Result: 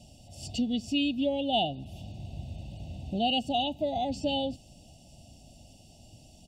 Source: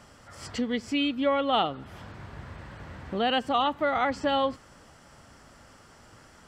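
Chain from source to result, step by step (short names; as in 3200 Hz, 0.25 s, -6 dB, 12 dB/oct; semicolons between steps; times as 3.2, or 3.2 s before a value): elliptic band-stop 690–2800 Hz, stop band 40 dB; comb 1.1 ms, depth 70%; Opus 96 kbps 48000 Hz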